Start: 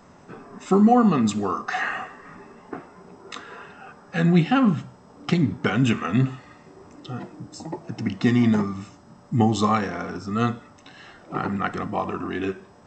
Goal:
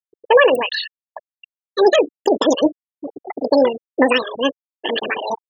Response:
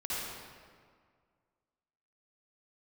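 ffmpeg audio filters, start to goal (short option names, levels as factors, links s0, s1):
-af "afftfilt=real='re*gte(hypot(re,im),0.112)':imag='im*gte(hypot(re,im),0.112)':win_size=1024:overlap=0.75,lowshelf=f=100:g=6.5,asetrate=103194,aresample=44100,volume=1.68"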